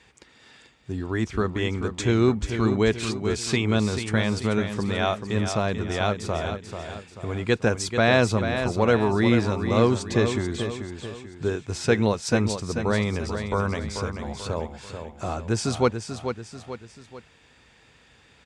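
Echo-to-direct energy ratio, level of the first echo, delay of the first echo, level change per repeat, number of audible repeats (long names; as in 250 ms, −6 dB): −7.0 dB, −8.0 dB, 438 ms, −7.0 dB, 3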